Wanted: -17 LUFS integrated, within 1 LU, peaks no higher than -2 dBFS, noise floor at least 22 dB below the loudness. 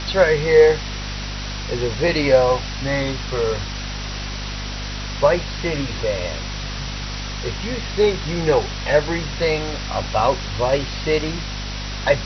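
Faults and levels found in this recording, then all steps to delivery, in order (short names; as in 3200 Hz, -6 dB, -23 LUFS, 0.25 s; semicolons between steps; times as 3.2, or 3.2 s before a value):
hum 50 Hz; harmonics up to 250 Hz; hum level -27 dBFS; noise floor -28 dBFS; noise floor target -43 dBFS; loudness -21.0 LUFS; peak -2.0 dBFS; loudness target -17.0 LUFS
-> de-hum 50 Hz, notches 5; denoiser 15 dB, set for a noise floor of -28 dBFS; gain +4 dB; limiter -2 dBFS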